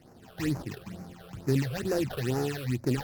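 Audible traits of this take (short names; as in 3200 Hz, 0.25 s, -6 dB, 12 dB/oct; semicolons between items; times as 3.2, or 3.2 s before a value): aliases and images of a low sample rate 2200 Hz, jitter 20%; phasing stages 8, 2.2 Hz, lowest notch 250–3300 Hz; Opus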